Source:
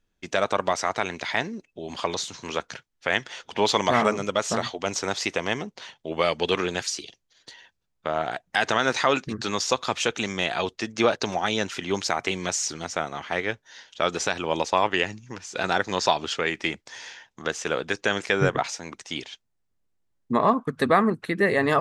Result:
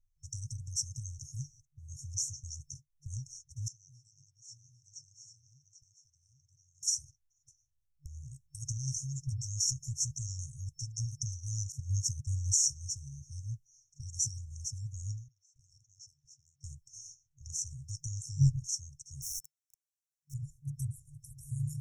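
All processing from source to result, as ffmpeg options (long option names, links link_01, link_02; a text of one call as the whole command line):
ffmpeg -i in.wav -filter_complex "[0:a]asettb=1/sr,asplit=3[link_01][link_02][link_03];[link_01]atrim=end=3.684[link_04];[link_02]atrim=start=3.68:end=6.83,asetpts=PTS-STARTPTS,afade=type=in:duration=0.004:curve=qsin,afade=type=out:start_time=3.146:duration=0.004:curve=qsin,highpass=580,lowpass=2100,aecho=1:1:795:0.562,atrim=end_sample=138915[link_05];[link_03]atrim=start=6.826[link_06];[link_04][link_05]acrossfade=duration=0.004:curve1=hsin:curve2=qsin[link_07];[link_07][link_06]acrossfade=duration=0.004:curve1=qsin:curve2=hsin,asettb=1/sr,asplit=3[link_08][link_09][link_10];[link_08]atrim=end=11.724[link_11];[link_09]atrim=start=11.72:end=12.69,asetpts=PTS-STARTPTS,afade=type=in:duration=0.004:curve=qsin,afade=type=out:start_time=0.966:duration=0.004:curve=qsin,equalizer=frequency=93:width_type=o:width=1.7:gain=7,agate=range=-33dB:threshold=-30dB:ratio=3:release=100:detection=peak[link_12];[link_10]atrim=start=12.686[link_13];[link_11][link_12]acrossfade=duration=0.004:curve1=hsin:curve2=qsin[link_14];[link_14][link_13]acrossfade=duration=0.004:curve1=qsin:curve2=hsin,asettb=1/sr,asplit=3[link_15][link_16][link_17];[link_15]atrim=end=15.284[link_18];[link_16]atrim=start=15.28:end=16.63,asetpts=PTS-STARTPTS,afade=type=in:duration=0.004:curve=qsin,afade=type=out:start_time=1.346:duration=0.004:curve=qsin,asplit=2[link_19][link_20];[link_20]highpass=frequency=720:poles=1,volume=13dB,asoftclip=type=tanh:threshold=-6dB[link_21];[link_19][link_21]amix=inputs=2:normalize=0,lowpass=frequency=7000:poles=1,volume=-6dB,asplit=3[link_22][link_23][link_24];[link_22]bandpass=frequency=270:width_type=q:width=8,volume=0dB[link_25];[link_23]bandpass=frequency=2290:width_type=q:width=8,volume=-6dB[link_26];[link_24]bandpass=frequency=3010:width_type=q:width=8,volume=-9dB[link_27];[link_25][link_26][link_27]amix=inputs=3:normalize=0[link_28];[link_17]atrim=start=16.626[link_29];[link_18][link_28]acrossfade=duration=0.004:curve1=hsin:curve2=qsin[link_30];[link_30][link_29]acrossfade=duration=0.004:curve1=qsin:curve2=hsin,asettb=1/sr,asplit=3[link_31][link_32][link_33];[link_31]atrim=end=19.224[link_34];[link_32]atrim=start=19.22:end=20.34,asetpts=PTS-STARTPTS,afade=type=in:duration=0.004:curve=qsin,afade=type=out:start_time=1.116:duration=0.004:curve=qsin,aeval=exprs='val(0)+0.5*0.0282*sgn(val(0))':channel_layout=same,highpass=frequency=970:poles=1,asplit=2[link_35][link_36];[link_36]highpass=frequency=720:poles=1,volume=15dB,asoftclip=type=tanh:threshold=-21dB[link_37];[link_35][link_37]amix=inputs=2:normalize=0,lowpass=frequency=6200:poles=1,volume=-6dB[link_38];[link_33]atrim=start=20.336[link_39];[link_34][link_38]acrossfade=duration=0.004:curve1=hsin:curve2=qsin[link_40];[link_40][link_39]acrossfade=duration=0.004:curve1=qsin:curve2=hsin,agate=range=-9dB:threshold=-41dB:ratio=16:detection=peak,afftfilt=real='re*(1-between(b*sr/4096,140,5400))':imag='im*(1-between(b*sr/4096,140,5400))':win_size=4096:overlap=0.75,lowshelf=frequency=100:gain=9,volume=1dB" out.wav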